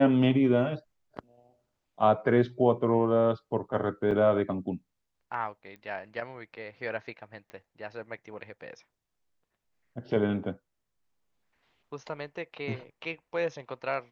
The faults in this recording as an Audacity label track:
4.110000	4.110000	dropout 4.6 ms
5.760000	5.760000	pop -34 dBFS
7.500000	7.500000	pop -30 dBFS

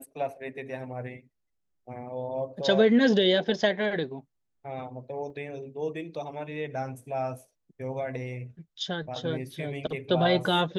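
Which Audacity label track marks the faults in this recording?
5.300000	5.300000	dropout 3.4 ms

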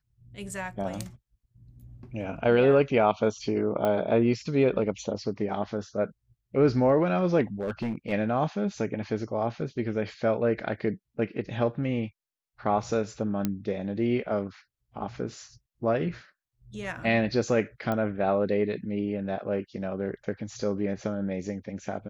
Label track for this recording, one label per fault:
3.850000	3.850000	pop -16 dBFS
7.600000	8.130000	clipped -25.5 dBFS
13.450000	13.450000	pop -13 dBFS
17.920000	17.920000	pop -17 dBFS

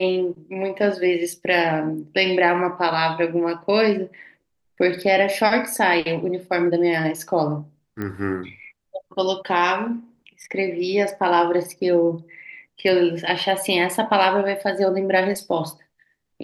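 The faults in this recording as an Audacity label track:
8.020000	8.020000	pop -17 dBFS

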